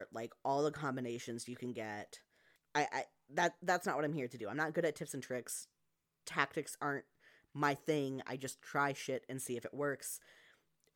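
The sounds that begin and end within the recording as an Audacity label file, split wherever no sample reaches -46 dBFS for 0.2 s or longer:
2.750000	3.040000	sound
3.340000	5.640000	sound
6.270000	7.000000	sound
7.550000	10.170000	sound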